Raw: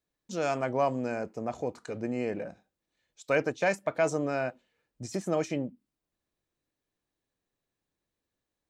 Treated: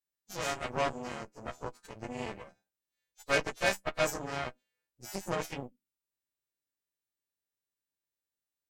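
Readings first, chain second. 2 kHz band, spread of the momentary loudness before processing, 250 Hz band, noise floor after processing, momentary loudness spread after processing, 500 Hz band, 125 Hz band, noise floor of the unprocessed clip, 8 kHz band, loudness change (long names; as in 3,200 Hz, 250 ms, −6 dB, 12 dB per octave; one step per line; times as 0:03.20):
0.0 dB, 10 LU, −9.0 dB, below −85 dBFS, 15 LU, −6.5 dB, −5.0 dB, below −85 dBFS, +2.5 dB, −3.5 dB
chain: every partial snapped to a pitch grid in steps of 2 semitones
harmonic generator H 3 −17 dB, 7 −25 dB, 8 −21 dB, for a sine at −12 dBFS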